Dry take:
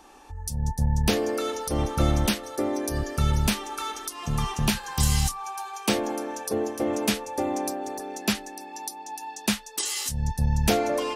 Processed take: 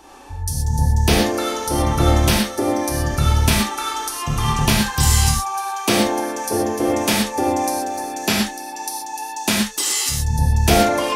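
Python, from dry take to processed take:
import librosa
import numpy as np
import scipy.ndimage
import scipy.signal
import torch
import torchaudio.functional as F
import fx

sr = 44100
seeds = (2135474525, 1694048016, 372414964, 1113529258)

y = fx.rev_gated(x, sr, seeds[0], gate_ms=150, shape='flat', drr_db=-2.0)
y = y * 10.0 ** (5.0 / 20.0)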